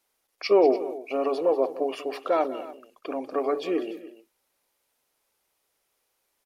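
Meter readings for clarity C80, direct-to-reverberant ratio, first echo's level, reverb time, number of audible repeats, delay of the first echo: none, none, -15.5 dB, none, 2, 0.192 s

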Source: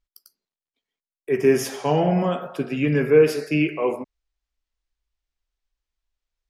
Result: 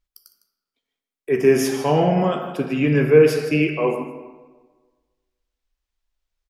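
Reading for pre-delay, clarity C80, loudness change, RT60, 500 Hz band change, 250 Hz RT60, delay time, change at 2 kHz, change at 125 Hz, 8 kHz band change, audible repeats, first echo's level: 25 ms, 9.0 dB, +2.5 dB, 1.4 s, +2.5 dB, 1.3 s, 0.156 s, +2.5 dB, +3.0 dB, +2.5 dB, 1, -14.0 dB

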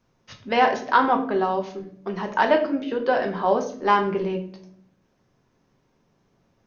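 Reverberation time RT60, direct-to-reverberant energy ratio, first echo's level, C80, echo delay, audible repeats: 0.60 s, 3.0 dB, none, 13.5 dB, none, none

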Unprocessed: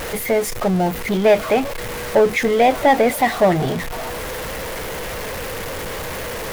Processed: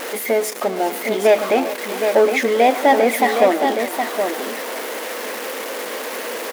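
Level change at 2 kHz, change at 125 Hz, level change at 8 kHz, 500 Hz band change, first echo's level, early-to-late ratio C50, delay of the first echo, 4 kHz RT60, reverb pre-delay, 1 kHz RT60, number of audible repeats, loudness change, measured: +1.0 dB, under -15 dB, +1.0 dB, +1.0 dB, -16.5 dB, none, 0.112 s, none, none, none, 3, +0.5 dB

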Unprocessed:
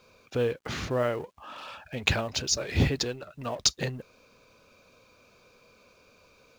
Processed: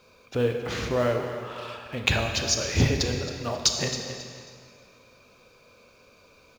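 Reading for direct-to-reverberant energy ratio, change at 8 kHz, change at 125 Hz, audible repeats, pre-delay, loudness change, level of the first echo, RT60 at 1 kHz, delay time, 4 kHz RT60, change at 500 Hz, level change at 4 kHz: 3.0 dB, +3.0 dB, +3.5 dB, 2, 21 ms, +2.5 dB, -13.0 dB, 2.1 s, 0.271 s, 1.9 s, +3.0 dB, +3.0 dB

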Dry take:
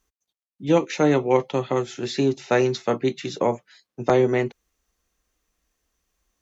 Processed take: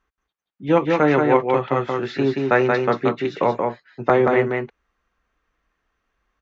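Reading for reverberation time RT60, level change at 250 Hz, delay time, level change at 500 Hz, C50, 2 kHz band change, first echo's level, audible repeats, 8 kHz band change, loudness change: none, +2.0 dB, 0.179 s, +3.0 dB, none, +7.0 dB, -3.5 dB, 1, n/a, +3.0 dB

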